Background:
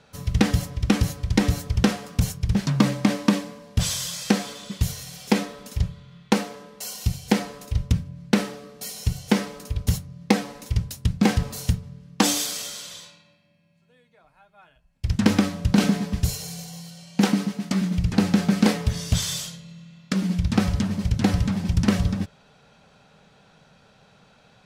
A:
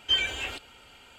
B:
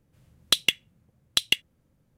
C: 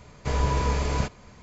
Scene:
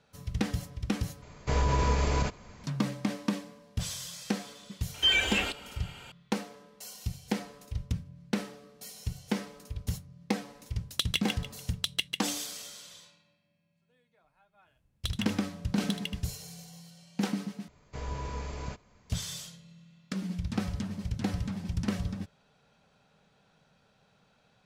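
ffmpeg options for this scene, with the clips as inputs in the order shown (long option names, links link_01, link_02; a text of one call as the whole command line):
ffmpeg -i bed.wav -i cue0.wav -i cue1.wav -i cue2.wav -filter_complex "[3:a]asplit=2[link_01][link_02];[2:a]asplit=2[link_03][link_04];[0:a]volume=-11dB[link_05];[link_01]alimiter=level_in=15dB:limit=-1dB:release=50:level=0:latency=1[link_06];[1:a]alimiter=level_in=19.5dB:limit=-1dB:release=50:level=0:latency=1[link_07];[link_03]aecho=1:1:145|290|435|580:0.596|0.191|0.061|0.0195[link_08];[link_04]aecho=1:1:77:0.335[link_09];[link_05]asplit=3[link_10][link_11][link_12];[link_10]atrim=end=1.224[link_13];[link_06]atrim=end=1.42,asetpts=PTS-STARTPTS,volume=-16dB[link_14];[link_11]atrim=start=2.636:end=17.684[link_15];[link_02]atrim=end=1.42,asetpts=PTS-STARTPTS,volume=-12.5dB[link_16];[link_12]atrim=start=19.096[link_17];[link_07]atrim=end=1.18,asetpts=PTS-STARTPTS,volume=-15dB,afade=type=in:duration=0.004:curve=hsin,afade=type=out:start_time=1.176:duration=0.004:curve=hsin,adelay=4940[link_18];[link_08]atrim=end=2.17,asetpts=PTS-STARTPTS,volume=-9dB,afade=type=in:duration=0.004:curve=hsin,afade=type=out:start_time=2.166:duration=0.004:curve=hsin,adelay=10470[link_19];[link_09]atrim=end=2.17,asetpts=PTS-STARTPTS,volume=-16dB,afade=type=in:duration=0.004:curve=hsin,afade=type=out:start_time=2.166:duration=0.004:curve=hsin,adelay=14530[link_20];[link_13][link_14]acrossfade=duration=0.004:curve1=hsin:curve2=hsin[link_21];[link_21][link_15]acrossfade=duration=0.004:curve1=hsin:curve2=hsin[link_22];[link_22][link_16]acrossfade=duration=0.004:curve1=hsin:curve2=hsin[link_23];[link_23][link_17]acrossfade=duration=0.004:curve1=hsin:curve2=hsin[link_24];[link_24][link_18][link_19][link_20]amix=inputs=4:normalize=0" out.wav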